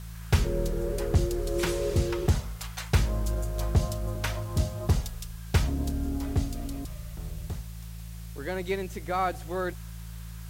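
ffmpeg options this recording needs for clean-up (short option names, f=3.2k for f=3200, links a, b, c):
-af "bandreject=f=55.6:t=h:w=4,bandreject=f=111.2:t=h:w=4,bandreject=f=166.8:t=h:w=4,afwtdn=0.0025"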